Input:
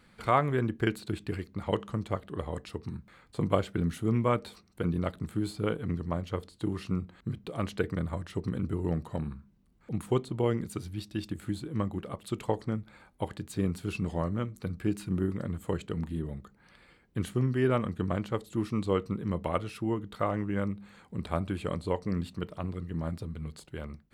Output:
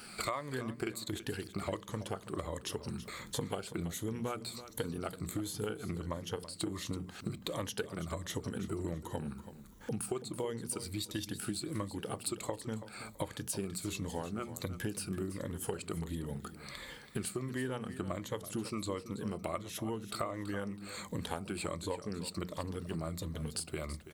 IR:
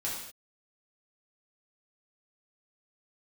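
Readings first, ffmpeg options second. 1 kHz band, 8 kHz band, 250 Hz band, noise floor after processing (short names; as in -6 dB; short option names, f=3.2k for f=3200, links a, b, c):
-7.5 dB, +10.0 dB, -7.5 dB, -53 dBFS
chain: -filter_complex "[0:a]afftfilt=real='re*pow(10,10/40*sin(2*PI*(1.1*log(max(b,1)*sr/1024/100)/log(2)-(-1.4)*(pts-256)/sr)))':imag='im*pow(10,10/40*sin(2*PI*(1.1*log(max(b,1)*sr/1024/100)/log(2)-(-1.4)*(pts-256)/sr)))':win_size=1024:overlap=0.75,bass=f=250:g=-5,treble=f=4k:g=12,bandreject=f=60:t=h:w=6,bandreject=f=120:t=h:w=6,bandreject=f=180:t=h:w=6,bandreject=f=240:t=h:w=6,acompressor=threshold=-44dB:ratio=8,asplit=2[a][b];[b]aecho=0:1:330|660|990:0.224|0.056|0.014[c];[a][c]amix=inputs=2:normalize=0,volume=9dB"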